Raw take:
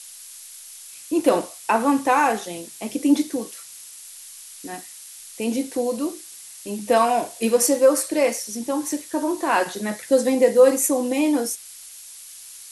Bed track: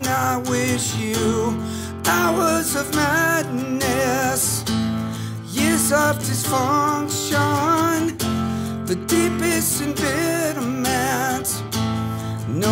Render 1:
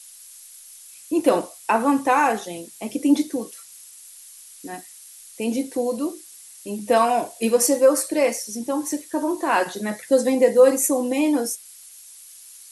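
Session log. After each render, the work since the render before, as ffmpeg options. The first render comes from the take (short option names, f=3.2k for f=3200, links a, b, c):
-af "afftdn=nr=6:nf=-42"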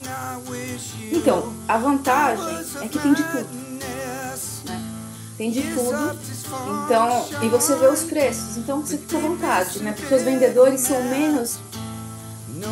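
-filter_complex "[1:a]volume=-10dB[a];[0:a][a]amix=inputs=2:normalize=0"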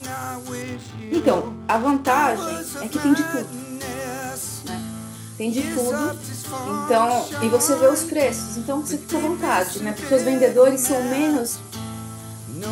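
-filter_complex "[0:a]asettb=1/sr,asplit=3[a][b][c];[a]atrim=end=0.624[d];[b]atrim=start=0.62:end=2.07,asetpts=PTS-STARTPTS,afade=t=in:d=0.004:c=qsin,afade=t=out:st=1.446:d=0.004:c=qsin,adynamicsmooth=sensitivity=7.5:basefreq=1.1k[e];[c]atrim=start=2.066[f];[d][e]acrossfade=d=0.004:c1=hsin:c2=qsin[g];[g][f]acrossfade=d=0.004:c1=qsin:c2=hsin"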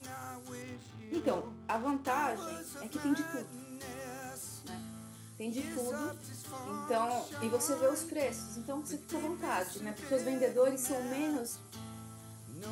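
-af "volume=-14.5dB"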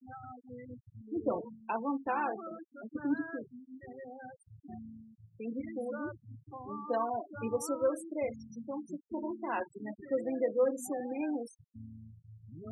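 -af "afftfilt=real='re*gte(hypot(re,im),0.0251)':imag='im*gte(hypot(re,im),0.0251)':win_size=1024:overlap=0.75,highshelf=f=6.6k:g=-7.5"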